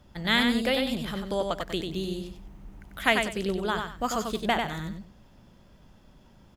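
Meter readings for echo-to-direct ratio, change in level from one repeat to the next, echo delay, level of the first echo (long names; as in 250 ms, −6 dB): −4.5 dB, −12.0 dB, 94 ms, −5.0 dB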